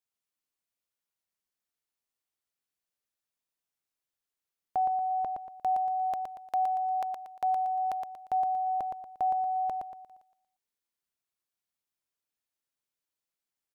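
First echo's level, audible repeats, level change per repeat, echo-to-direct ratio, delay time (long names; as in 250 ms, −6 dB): −5.0 dB, 4, −9.0 dB, −4.5 dB, 117 ms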